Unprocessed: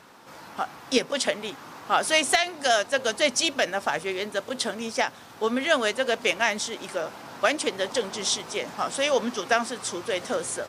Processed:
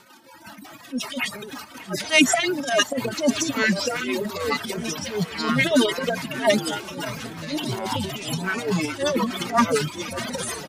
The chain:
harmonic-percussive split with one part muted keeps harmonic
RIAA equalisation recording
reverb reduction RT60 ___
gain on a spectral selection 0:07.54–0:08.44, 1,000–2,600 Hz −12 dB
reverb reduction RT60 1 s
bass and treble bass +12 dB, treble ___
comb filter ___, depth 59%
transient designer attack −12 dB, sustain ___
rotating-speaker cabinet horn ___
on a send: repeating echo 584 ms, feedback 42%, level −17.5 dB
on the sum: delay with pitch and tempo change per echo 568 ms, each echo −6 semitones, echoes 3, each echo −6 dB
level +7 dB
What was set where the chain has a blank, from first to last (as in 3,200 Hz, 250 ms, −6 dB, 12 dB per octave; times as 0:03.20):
0.64 s, −9 dB, 3.2 ms, +11 dB, 5.5 Hz